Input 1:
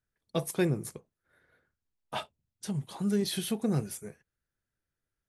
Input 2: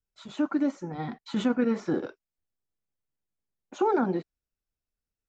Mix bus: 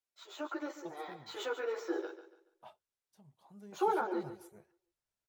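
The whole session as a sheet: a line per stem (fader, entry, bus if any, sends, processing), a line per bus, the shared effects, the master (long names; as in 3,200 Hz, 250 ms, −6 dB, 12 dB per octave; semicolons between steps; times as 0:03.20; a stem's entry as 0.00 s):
0:03.25 −19 dB → 0:03.96 −11 dB, 0.50 s, no send, no echo send, flat-topped bell 800 Hz +9 dB 1.1 octaves; automatic ducking −10 dB, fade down 1.30 s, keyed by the second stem
−2.0 dB, 0.00 s, no send, echo send −12 dB, elliptic high-pass filter 350 Hz, stop band 40 dB; high-shelf EQ 5,100 Hz +7.5 dB; string-ensemble chorus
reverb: not used
echo: repeating echo 142 ms, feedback 32%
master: linearly interpolated sample-rate reduction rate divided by 2×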